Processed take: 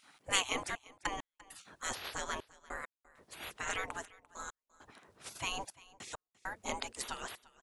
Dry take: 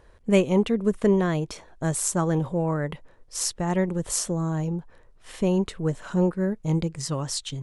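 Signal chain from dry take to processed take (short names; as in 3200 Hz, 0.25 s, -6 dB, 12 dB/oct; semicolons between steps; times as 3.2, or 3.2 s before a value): spectral gate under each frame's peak -25 dB weak; step gate "xxxxx..x..x" 100 bpm -60 dB; echo 0.345 s -21.5 dB; gain +6.5 dB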